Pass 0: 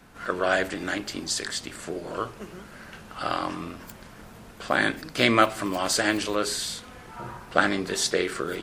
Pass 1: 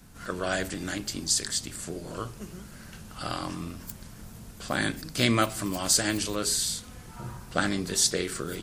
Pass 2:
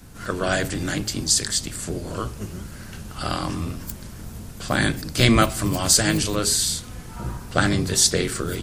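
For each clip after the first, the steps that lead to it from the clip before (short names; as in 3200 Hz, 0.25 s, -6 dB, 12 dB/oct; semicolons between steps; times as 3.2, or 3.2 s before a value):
tone controls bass +12 dB, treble +13 dB; gain -7 dB
octaver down 1 oct, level 0 dB; gain +6 dB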